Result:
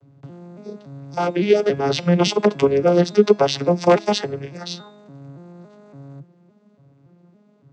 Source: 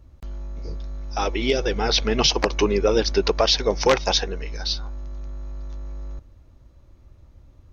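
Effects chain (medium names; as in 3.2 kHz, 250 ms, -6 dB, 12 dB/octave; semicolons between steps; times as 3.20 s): vocoder on a broken chord major triad, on C#3, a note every 282 ms; de-hum 333.5 Hz, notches 26; trim +5 dB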